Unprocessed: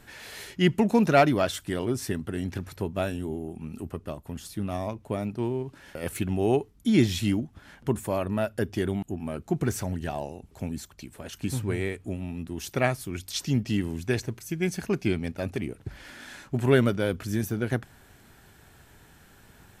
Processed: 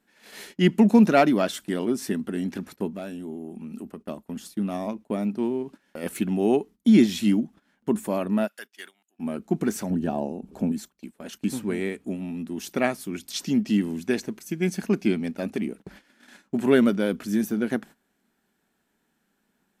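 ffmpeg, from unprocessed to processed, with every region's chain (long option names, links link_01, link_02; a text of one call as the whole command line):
ffmpeg -i in.wav -filter_complex "[0:a]asettb=1/sr,asplit=3[link_01][link_02][link_03];[link_01]atrim=end=2.894[link_04];[link_02]atrim=start=2.89:end=4.01,asetpts=PTS-STARTPTS,afade=type=in:duration=0.004:curve=qsin,afade=type=out:start_time=1.116:duration=0.004:curve=qsin,asoftclip=type=hard:threshold=-19.5dB,acompressor=threshold=-37dB:ratio=2:attack=3.2:release=140:knee=1:detection=peak[link_05];[link_03]atrim=start=4.006[link_06];[link_04][link_05]acrossfade=duration=0.004:curve1=hsin:curve2=qsin[link_07];[link_07][link_06]acrossfade=duration=0.004:curve1=qsin:curve2=hsin,asettb=1/sr,asplit=3[link_08][link_09][link_10];[link_08]atrim=end=8.474[link_11];[link_09]atrim=start=8.47:end=9.19,asetpts=PTS-STARTPTS,afade=type=in:duration=0.004:curve=qsin,afade=type=out:start_time=0.716:duration=0.004:curve=qsin,highpass=1500,acrusher=bits=7:mode=log:mix=0:aa=0.000001[link_12];[link_10]atrim=start=9.186[link_13];[link_11][link_12]acrossfade=duration=0.004:curve1=hsin:curve2=qsin[link_14];[link_14][link_13]acrossfade=duration=0.004:curve1=qsin:curve2=hsin,asettb=1/sr,asplit=3[link_15][link_16][link_17];[link_15]atrim=end=9.904[link_18];[link_16]atrim=start=9.9:end=10.72,asetpts=PTS-STARTPTS,afade=type=in:duration=0.004:curve=qsin,afade=type=out:start_time=0.816:duration=0.004:curve=qsin,tiltshelf=frequency=1100:gain=6.5,acompressor=mode=upward:threshold=-32dB:ratio=2.5:attack=3.2:release=140:knee=2.83:detection=peak,asuperstop=centerf=2000:order=4:qfactor=6.8[link_19];[link_17]atrim=start=10.716[link_20];[link_18][link_19]acrossfade=duration=0.004:curve1=hsin:curve2=qsin[link_21];[link_21][link_20]acrossfade=duration=0.004:curve1=qsin:curve2=hsin,agate=range=-18dB:threshold=-42dB:ratio=16:detection=peak,lowshelf=frequency=150:width_type=q:width=3:gain=-11" out.wav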